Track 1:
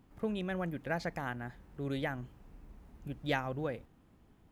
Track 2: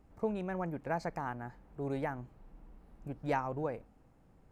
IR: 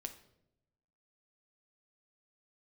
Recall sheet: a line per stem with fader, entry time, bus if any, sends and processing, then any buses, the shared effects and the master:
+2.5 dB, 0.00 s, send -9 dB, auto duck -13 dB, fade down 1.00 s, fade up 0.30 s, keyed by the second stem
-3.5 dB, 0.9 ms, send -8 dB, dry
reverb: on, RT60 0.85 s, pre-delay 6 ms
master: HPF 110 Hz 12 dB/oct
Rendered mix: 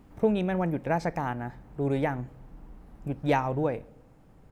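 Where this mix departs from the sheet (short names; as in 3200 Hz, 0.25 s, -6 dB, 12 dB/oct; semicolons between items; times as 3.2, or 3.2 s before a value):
stem 2 -3.5 dB -> +5.0 dB; master: missing HPF 110 Hz 12 dB/oct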